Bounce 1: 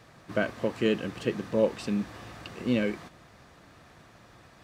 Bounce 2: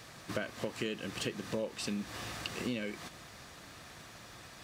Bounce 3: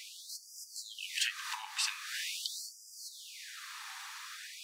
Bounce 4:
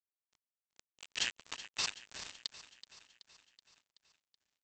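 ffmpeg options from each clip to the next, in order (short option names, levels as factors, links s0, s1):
-af "highshelf=f=2400:g=11.5,acompressor=threshold=0.0224:ratio=8"
-af "afftfilt=real='re*gte(b*sr/1024,750*pow(4800/750,0.5+0.5*sin(2*PI*0.44*pts/sr)))':imag='im*gte(b*sr/1024,750*pow(4800/750,0.5+0.5*sin(2*PI*0.44*pts/sr)))':win_size=1024:overlap=0.75,volume=2.37"
-af "aresample=16000,acrusher=bits=4:mix=0:aa=0.5,aresample=44100,aecho=1:1:377|754|1131|1508|1885|2262:0.188|0.111|0.0656|0.0387|0.0228|0.0135,volume=0.841"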